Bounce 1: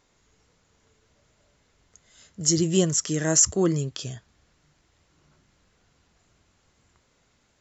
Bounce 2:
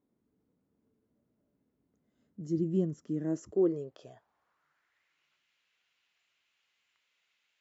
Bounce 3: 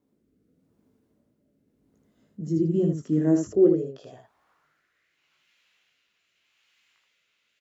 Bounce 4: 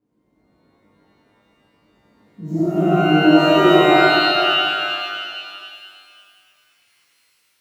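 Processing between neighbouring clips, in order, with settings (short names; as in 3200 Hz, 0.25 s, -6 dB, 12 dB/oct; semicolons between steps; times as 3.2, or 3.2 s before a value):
band-pass sweep 250 Hz -> 2700 Hz, 3.21–5.29; gain -1.5 dB
rotary speaker horn 0.85 Hz; on a send: early reflections 19 ms -5 dB, 78 ms -4 dB; on the sum: gain +8 dB
median filter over 9 samples; shimmer reverb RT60 2.2 s, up +12 st, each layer -2 dB, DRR -9 dB; gain -3 dB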